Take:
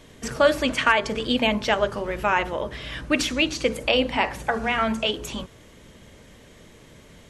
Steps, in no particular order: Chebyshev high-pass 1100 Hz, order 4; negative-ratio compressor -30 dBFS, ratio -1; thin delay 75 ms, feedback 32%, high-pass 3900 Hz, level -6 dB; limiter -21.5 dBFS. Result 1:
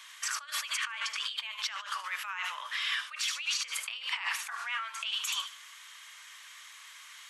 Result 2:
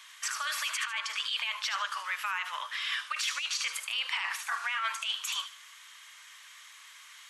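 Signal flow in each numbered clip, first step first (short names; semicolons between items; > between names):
thin delay > negative-ratio compressor > Chebyshev high-pass > limiter; Chebyshev high-pass > negative-ratio compressor > limiter > thin delay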